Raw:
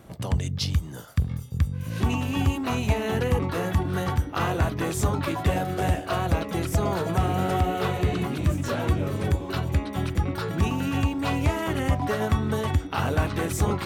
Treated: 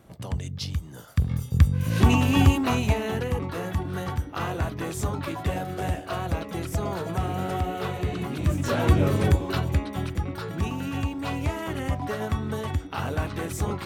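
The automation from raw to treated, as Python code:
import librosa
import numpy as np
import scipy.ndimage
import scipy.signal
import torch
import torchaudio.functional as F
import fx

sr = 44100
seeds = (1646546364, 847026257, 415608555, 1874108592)

y = fx.gain(x, sr, db=fx.line((0.91, -5.0), (1.46, 6.0), (2.44, 6.0), (3.27, -4.0), (8.17, -4.0), (9.05, 6.0), (10.24, -4.0)))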